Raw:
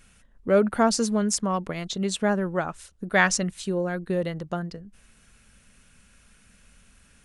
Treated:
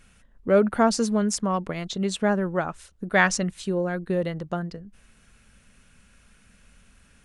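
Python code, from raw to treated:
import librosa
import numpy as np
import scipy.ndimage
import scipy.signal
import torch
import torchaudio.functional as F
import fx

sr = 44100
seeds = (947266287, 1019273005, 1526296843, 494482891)

y = fx.high_shelf(x, sr, hz=4500.0, db=-5.0)
y = y * librosa.db_to_amplitude(1.0)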